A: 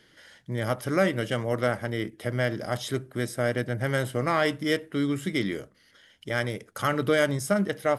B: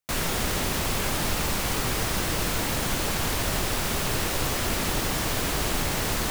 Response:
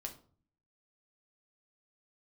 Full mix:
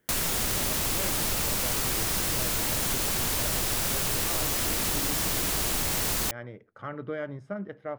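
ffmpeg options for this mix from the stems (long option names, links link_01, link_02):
-filter_complex "[0:a]lowpass=1700,volume=-10.5dB[link_01];[1:a]highshelf=frequency=4700:gain=9.5,volume=-0.5dB[link_02];[link_01][link_02]amix=inputs=2:normalize=0,acompressor=threshold=-26dB:ratio=2.5"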